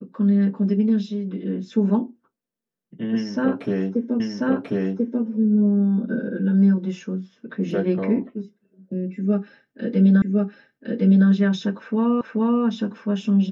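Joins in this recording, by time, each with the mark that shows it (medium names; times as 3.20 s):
4.20 s: repeat of the last 1.04 s
10.22 s: repeat of the last 1.06 s
12.21 s: repeat of the last 0.43 s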